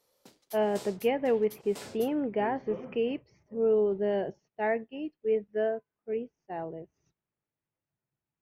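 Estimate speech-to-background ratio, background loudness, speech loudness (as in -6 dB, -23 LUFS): 17.5 dB, -48.0 LUFS, -30.5 LUFS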